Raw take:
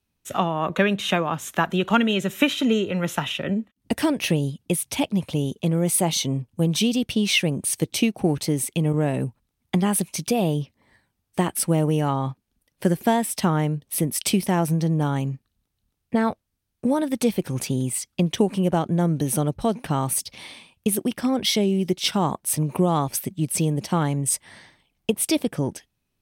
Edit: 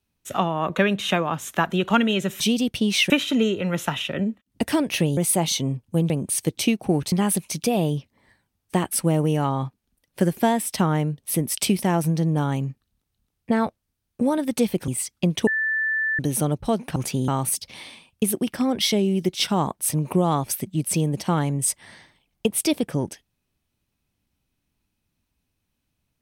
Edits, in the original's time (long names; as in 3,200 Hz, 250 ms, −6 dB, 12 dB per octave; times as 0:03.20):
0:04.47–0:05.82: remove
0:06.75–0:07.45: move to 0:02.40
0:08.47–0:09.76: remove
0:17.52–0:17.84: move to 0:19.92
0:18.43–0:19.15: beep over 1,760 Hz −20.5 dBFS